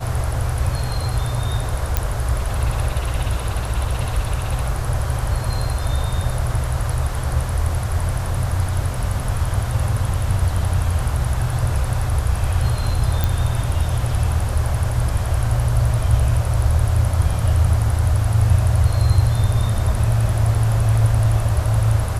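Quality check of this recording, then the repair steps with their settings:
1.97 s: pop -4 dBFS
13.24 s: pop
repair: de-click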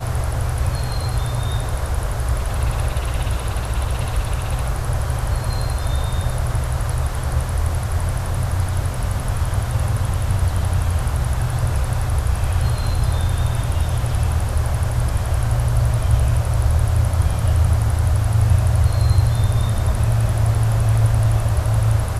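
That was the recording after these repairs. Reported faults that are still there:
nothing left

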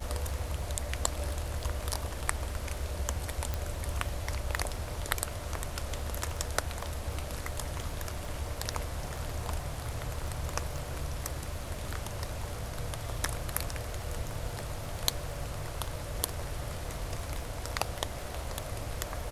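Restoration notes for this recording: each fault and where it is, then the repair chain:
crackle 40 per s -40 dBFS
3.54 s: pop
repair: de-click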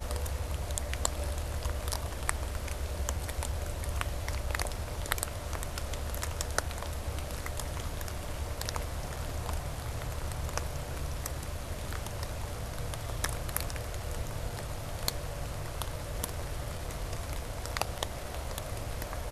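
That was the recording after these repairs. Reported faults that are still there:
3.54 s: pop

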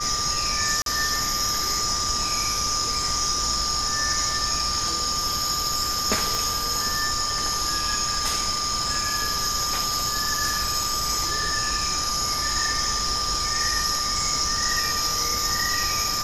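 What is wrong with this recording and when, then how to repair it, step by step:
whine 1.2 kHz -29 dBFS
0.82–0.86 s: dropout 42 ms
6.35 s: pop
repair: de-click; band-stop 1.2 kHz, Q 30; interpolate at 0.82 s, 42 ms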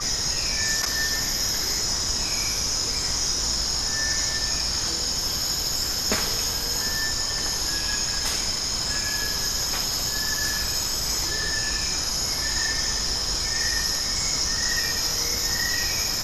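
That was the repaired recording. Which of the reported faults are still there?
6.35 s: pop

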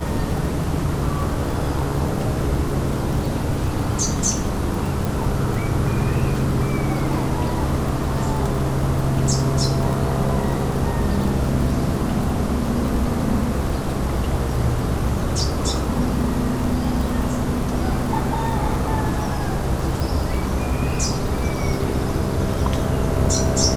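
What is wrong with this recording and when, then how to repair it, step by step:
crackle 30 per s -25 dBFS
5.05 s: pop
20.00 s: pop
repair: de-click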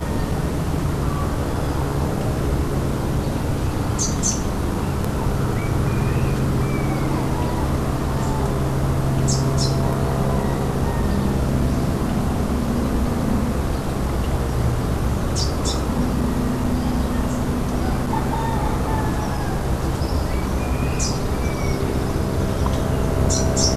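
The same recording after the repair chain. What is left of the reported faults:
5.05 s: pop

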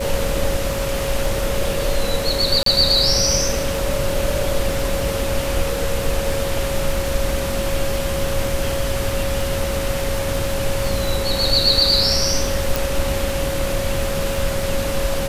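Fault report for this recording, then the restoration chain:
crackle 53 per s -26 dBFS
whine 550 Hz -24 dBFS
2.63–2.66 s: dropout 33 ms
12.76 s: pop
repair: de-click; band-stop 550 Hz, Q 30; interpolate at 2.63 s, 33 ms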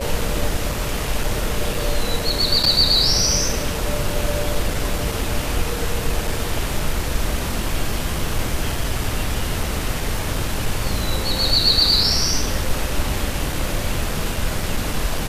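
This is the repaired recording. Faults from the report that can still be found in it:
nothing left

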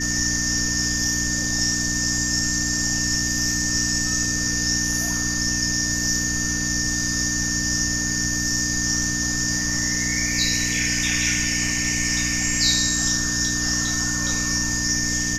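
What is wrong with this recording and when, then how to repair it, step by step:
hum 60 Hz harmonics 5 -29 dBFS
whine 1.8 kHz -28 dBFS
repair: de-hum 60 Hz, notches 5; band-stop 1.8 kHz, Q 30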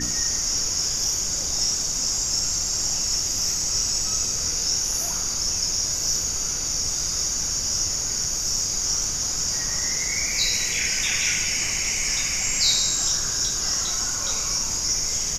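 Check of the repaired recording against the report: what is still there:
nothing left

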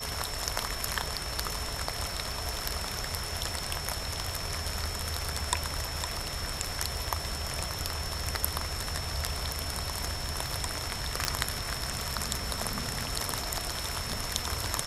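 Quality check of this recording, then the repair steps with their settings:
crackle 58 per s -40 dBFS
whine 5.4 kHz -39 dBFS
11.25 s: pop -9 dBFS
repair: de-click; band-stop 5.4 kHz, Q 30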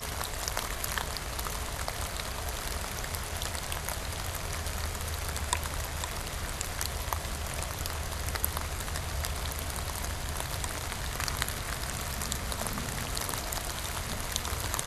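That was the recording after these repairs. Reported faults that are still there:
11.25 s: pop

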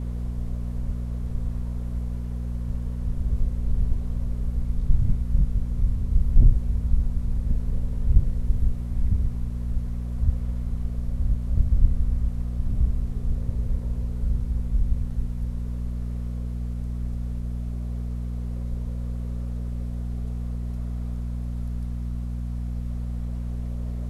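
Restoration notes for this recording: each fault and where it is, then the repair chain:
hum 60 Hz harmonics 4 -29 dBFS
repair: de-hum 60 Hz, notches 4

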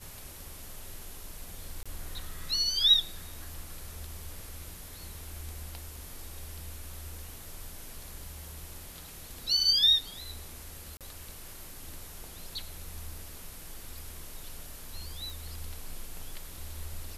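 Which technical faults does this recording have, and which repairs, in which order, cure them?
1.83–1.86 s: dropout 26 ms
10.97–11.01 s: dropout 37 ms
15.30 s: pop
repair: de-click; interpolate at 1.83 s, 26 ms; interpolate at 10.97 s, 37 ms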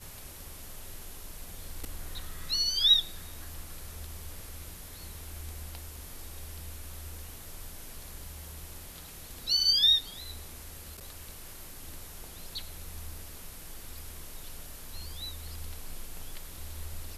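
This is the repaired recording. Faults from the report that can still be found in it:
nothing left

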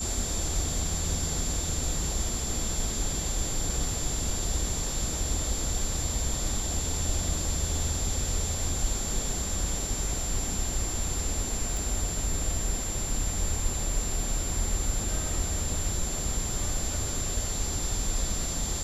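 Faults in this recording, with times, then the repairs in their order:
whine 7.3 kHz -33 dBFS
11.77 s: pop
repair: de-click; band-stop 7.3 kHz, Q 30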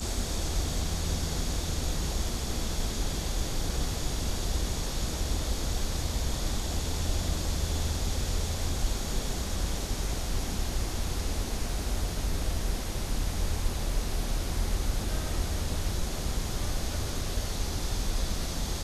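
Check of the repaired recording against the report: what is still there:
nothing left

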